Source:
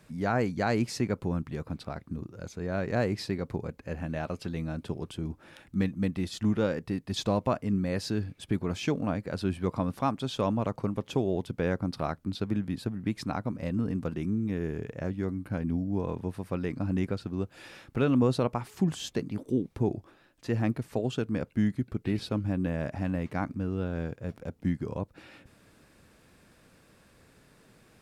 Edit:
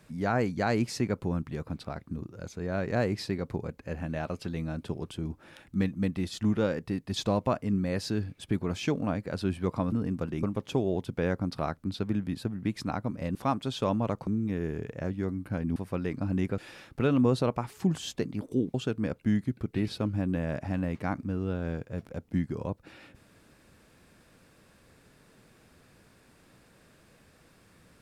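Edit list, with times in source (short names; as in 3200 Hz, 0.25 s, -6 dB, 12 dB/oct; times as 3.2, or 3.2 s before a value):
9.92–10.84 swap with 13.76–14.27
15.76–16.35 cut
17.17–17.55 cut
19.71–21.05 cut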